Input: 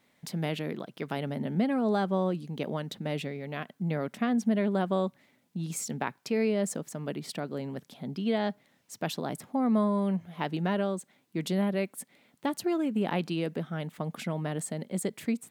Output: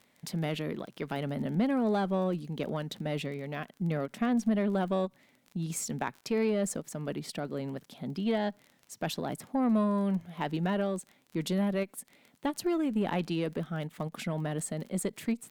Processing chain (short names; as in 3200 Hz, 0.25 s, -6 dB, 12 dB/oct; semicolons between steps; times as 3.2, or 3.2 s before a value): crackle 24/s -40 dBFS; added harmonics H 5 -25 dB, 6 -30 dB, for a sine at -14 dBFS; ending taper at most 550 dB/s; gain -2 dB